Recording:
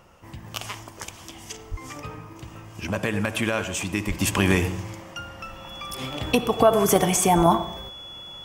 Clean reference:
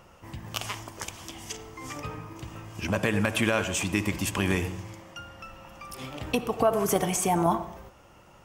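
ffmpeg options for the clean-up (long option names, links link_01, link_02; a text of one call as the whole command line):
ffmpeg -i in.wav -filter_complex "[0:a]bandreject=frequency=3400:width=30,asplit=3[link_01][link_02][link_03];[link_01]afade=type=out:start_time=1.7:duration=0.02[link_04];[link_02]highpass=frequency=140:width=0.5412,highpass=frequency=140:width=1.3066,afade=type=in:start_time=1.7:duration=0.02,afade=type=out:start_time=1.82:duration=0.02[link_05];[link_03]afade=type=in:start_time=1.82:duration=0.02[link_06];[link_04][link_05][link_06]amix=inputs=3:normalize=0,asplit=3[link_07][link_08][link_09];[link_07]afade=type=out:start_time=4.07:duration=0.02[link_10];[link_08]highpass=frequency=140:width=0.5412,highpass=frequency=140:width=1.3066,afade=type=in:start_time=4.07:duration=0.02,afade=type=out:start_time=4.19:duration=0.02[link_11];[link_09]afade=type=in:start_time=4.19:duration=0.02[link_12];[link_10][link_11][link_12]amix=inputs=3:normalize=0,asplit=3[link_13][link_14][link_15];[link_13]afade=type=out:start_time=7.36:duration=0.02[link_16];[link_14]highpass=frequency=140:width=0.5412,highpass=frequency=140:width=1.3066,afade=type=in:start_time=7.36:duration=0.02,afade=type=out:start_time=7.48:duration=0.02[link_17];[link_15]afade=type=in:start_time=7.48:duration=0.02[link_18];[link_16][link_17][link_18]amix=inputs=3:normalize=0,asetnsamples=nb_out_samples=441:pad=0,asendcmd='4.2 volume volume -6dB',volume=0dB" out.wav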